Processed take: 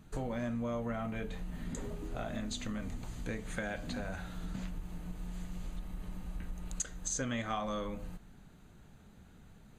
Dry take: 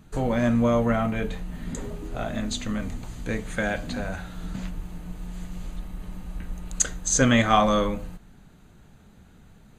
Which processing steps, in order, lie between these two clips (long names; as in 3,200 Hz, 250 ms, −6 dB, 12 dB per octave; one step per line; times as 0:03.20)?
downward compressor 4 to 1, threshold −30 dBFS, peak gain reduction 13.5 dB
level −5 dB